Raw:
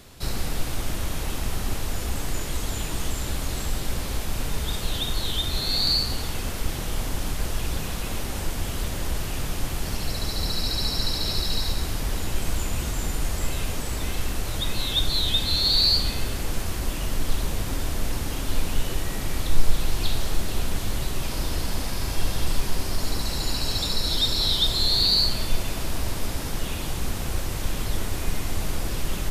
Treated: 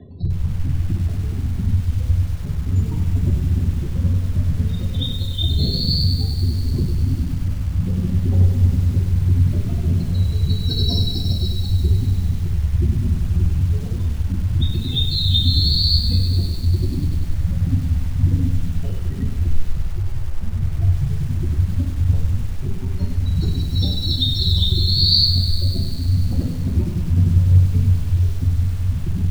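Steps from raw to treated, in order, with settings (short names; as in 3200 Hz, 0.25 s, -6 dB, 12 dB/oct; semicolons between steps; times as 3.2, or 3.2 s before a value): median filter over 3 samples; 3.84–5.48 notches 60/120/180/240/300/360/420/480 Hz; spectral gate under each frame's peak -15 dB strong; rotary speaker horn 0.9 Hz, later 6 Hz, at 25.03; reverb RT60 0.55 s, pre-delay 3 ms, DRR 0 dB; lo-fi delay 98 ms, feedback 80%, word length 6-bit, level -9.5 dB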